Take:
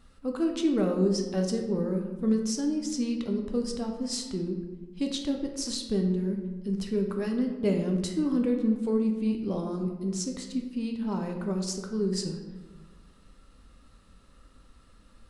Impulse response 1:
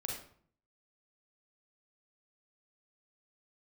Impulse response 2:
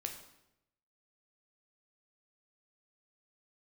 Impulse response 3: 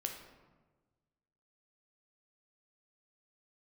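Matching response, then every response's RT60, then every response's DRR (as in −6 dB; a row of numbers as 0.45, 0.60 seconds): 3; 0.55, 0.85, 1.3 seconds; −1.5, 3.5, 2.5 decibels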